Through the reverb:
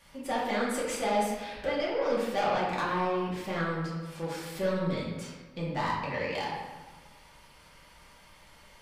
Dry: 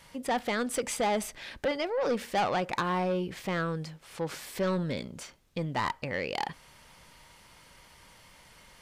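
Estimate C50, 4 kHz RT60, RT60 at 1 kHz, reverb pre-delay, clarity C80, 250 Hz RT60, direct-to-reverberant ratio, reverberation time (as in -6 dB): 0.5 dB, 0.85 s, 1.4 s, 3 ms, 3.5 dB, 1.4 s, -7.0 dB, 1.3 s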